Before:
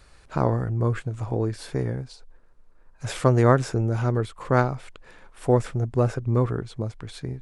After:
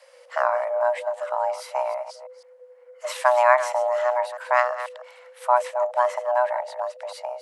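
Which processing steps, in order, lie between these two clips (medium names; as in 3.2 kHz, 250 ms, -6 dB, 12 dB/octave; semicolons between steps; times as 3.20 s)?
chunks repeated in reverse 162 ms, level -12 dB; frequency shift +490 Hz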